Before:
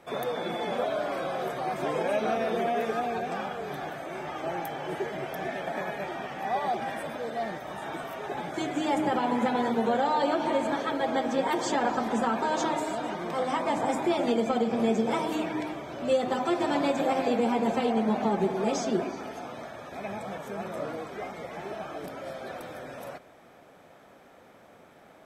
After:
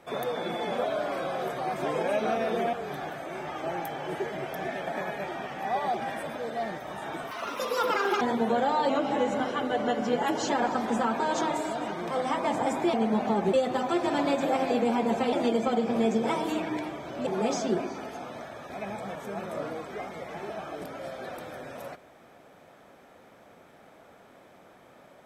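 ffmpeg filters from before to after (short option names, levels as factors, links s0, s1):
-filter_complex "[0:a]asplit=10[s0][s1][s2][s3][s4][s5][s6][s7][s8][s9];[s0]atrim=end=2.732[s10];[s1]atrim=start=3.528:end=8.114[s11];[s2]atrim=start=8.11:end=9.58,asetpts=PTS-STARTPTS,asetrate=71883,aresample=44100,atrim=end_sample=39771,asetpts=PTS-STARTPTS[s12];[s3]atrim=start=9.576:end=10.264[s13];[s4]atrim=start=10.26:end=11.71,asetpts=PTS-STARTPTS,asetrate=40131,aresample=44100,atrim=end_sample=70269,asetpts=PTS-STARTPTS[s14];[s5]atrim=start=11.706:end=14.162[s15];[s6]atrim=start=17.888:end=18.492[s16];[s7]atrim=start=16.098:end=17.892[s17];[s8]atrim=start=14.158:end=16.102[s18];[s9]atrim=start=18.488[s19];[s10][s11]acrossfade=d=0.004:c1=hsin:c2=hsin[s20];[s20][s12]acrossfade=d=0.004:c1=hsin:c2=hsin[s21];[s21][s13]acrossfade=d=0.004:c1=hsin:c2=hsin[s22];[s22][s14]acrossfade=d=0.004:c1=hsin:c2=hsin[s23];[s23][s15]acrossfade=d=0.004:c1=hsin:c2=hsin[s24];[s24][s16]acrossfade=d=0.004:c1=hsin:c2=hsin[s25];[s25][s17]acrossfade=d=0.004:c1=hsin:c2=hsin[s26];[s26][s18]acrossfade=d=0.004:c1=hsin:c2=hsin[s27];[s27][s19]acrossfade=d=0.004:c1=hsin:c2=hsin"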